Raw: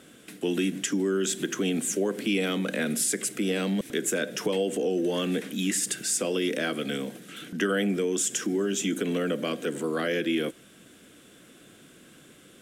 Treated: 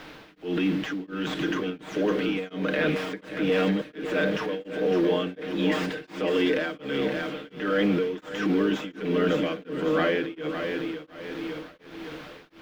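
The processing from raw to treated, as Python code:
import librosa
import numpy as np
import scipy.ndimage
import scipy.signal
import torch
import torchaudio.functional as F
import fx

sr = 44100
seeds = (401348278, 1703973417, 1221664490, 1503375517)

p1 = fx.tracing_dist(x, sr, depth_ms=0.079)
p2 = scipy.signal.sosfilt(scipy.signal.butter(2, 82.0, 'highpass', fs=sr, output='sos'), p1)
p3 = fx.low_shelf(p2, sr, hz=210.0, db=-9.5)
p4 = p3 + 0.83 * np.pad(p3, (int(6.5 * sr / 1000.0), 0))[:len(p3)]
p5 = fx.over_compress(p4, sr, threshold_db=-29.0, ratio=-1.0)
p6 = p4 + (p5 * 10.0 ** (0.5 / 20.0))
p7 = fx.transient(p6, sr, attack_db=-6, sustain_db=5)
p8 = fx.quant_dither(p7, sr, seeds[0], bits=6, dither='triangular')
p9 = fx.air_absorb(p8, sr, metres=320.0)
p10 = p9 + fx.echo_feedback(p9, sr, ms=556, feedback_pct=56, wet_db=-7, dry=0)
y = p10 * np.abs(np.cos(np.pi * 1.4 * np.arange(len(p10)) / sr))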